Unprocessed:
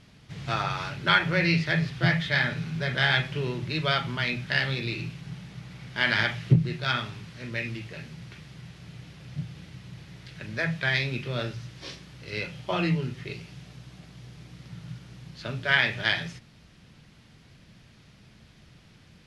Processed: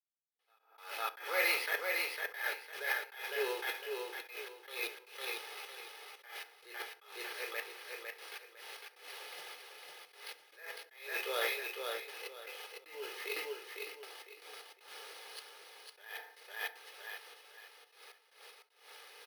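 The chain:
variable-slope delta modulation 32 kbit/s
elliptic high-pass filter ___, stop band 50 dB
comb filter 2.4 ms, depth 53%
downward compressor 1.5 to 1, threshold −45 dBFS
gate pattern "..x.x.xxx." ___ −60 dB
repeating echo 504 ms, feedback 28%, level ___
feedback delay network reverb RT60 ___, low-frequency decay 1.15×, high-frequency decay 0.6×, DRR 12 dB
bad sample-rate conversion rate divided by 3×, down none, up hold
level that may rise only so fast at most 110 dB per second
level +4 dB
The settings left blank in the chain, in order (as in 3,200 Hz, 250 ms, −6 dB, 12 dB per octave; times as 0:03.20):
440 Hz, 77 BPM, −4 dB, 0.68 s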